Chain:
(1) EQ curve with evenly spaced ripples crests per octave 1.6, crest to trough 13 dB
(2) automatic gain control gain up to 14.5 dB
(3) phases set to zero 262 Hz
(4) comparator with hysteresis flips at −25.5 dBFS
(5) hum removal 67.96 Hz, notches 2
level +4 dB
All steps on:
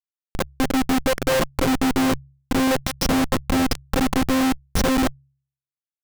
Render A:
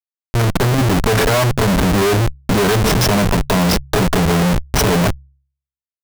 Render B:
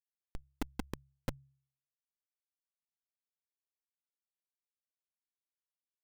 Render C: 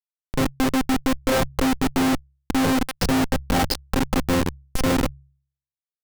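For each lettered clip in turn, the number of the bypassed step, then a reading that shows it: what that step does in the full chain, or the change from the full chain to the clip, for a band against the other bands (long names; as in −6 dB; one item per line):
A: 3, 125 Hz band +8.0 dB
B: 2, change in crest factor +16.0 dB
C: 1, 125 Hz band +2.5 dB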